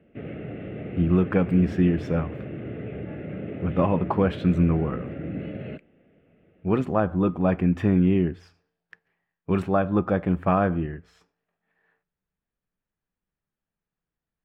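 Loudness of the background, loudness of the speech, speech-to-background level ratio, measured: -35.5 LUFS, -24.0 LUFS, 11.5 dB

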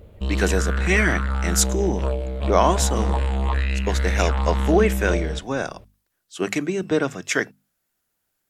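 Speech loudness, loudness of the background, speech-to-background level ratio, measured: -23.5 LUFS, -24.5 LUFS, 1.0 dB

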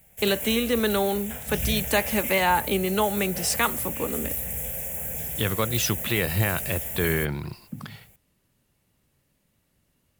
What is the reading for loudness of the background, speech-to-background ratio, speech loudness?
-29.5 LUFS, 4.0 dB, -25.5 LUFS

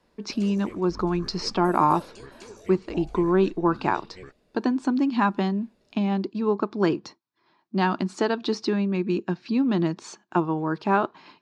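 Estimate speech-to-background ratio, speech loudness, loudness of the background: 19.0 dB, -25.5 LUFS, -44.5 LUFS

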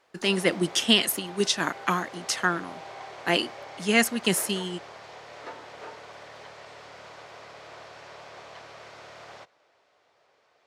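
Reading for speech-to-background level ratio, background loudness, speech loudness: 18.0 dB, -43.0 LUFS, -25.0 LUFS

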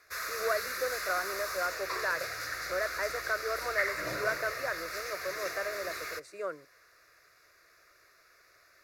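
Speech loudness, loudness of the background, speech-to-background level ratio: -36.0 LUFS, -36.0 LUFS, 0.0 dB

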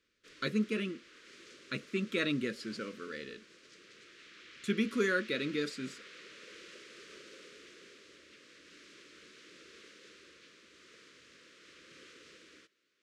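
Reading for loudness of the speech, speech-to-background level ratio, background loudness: -35.0 LUFS, 18.5 dB, -53.5 LUFS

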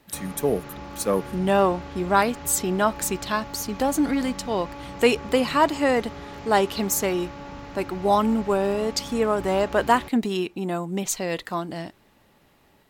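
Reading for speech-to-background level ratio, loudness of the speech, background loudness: 14.5 dB, -24.0 LUFS, -38.5 LUFS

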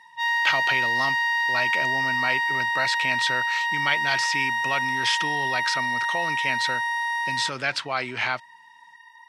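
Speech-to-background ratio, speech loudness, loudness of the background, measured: -4.5 dB, -28.0 LUFS, -23.5 LUFS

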